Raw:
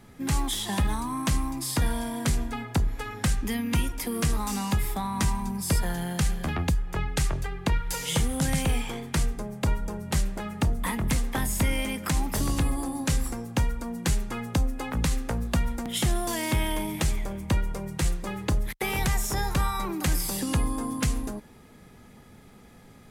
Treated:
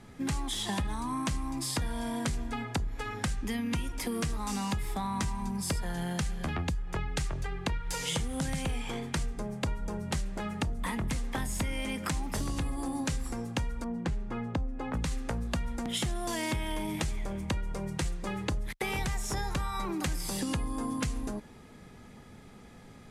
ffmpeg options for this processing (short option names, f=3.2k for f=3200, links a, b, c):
-filter_complex "[0:a]asettb=1/sr,asplit=3[a][b][c];[a]atrim=end=13.844[d];[b]atrim=start=13.84:end=14.94,asetpts=PTS-STARTPTS,afade=t=in:d=0.004:c=qsin,afade=t=out:st=1.096:d=0.004:c=qsin,lowpass=f=1.1k:p=1[e];[c]atrim=start=14.936[f];[d][e]acrossfade=d=0.004:c1=hsin:c2=qsin[g];[g][f]acrossfade=d=0.004:c1=qsin:c2=hsin,lowpass=9.4k,acompressor=threshold=-29dB:ratio=6"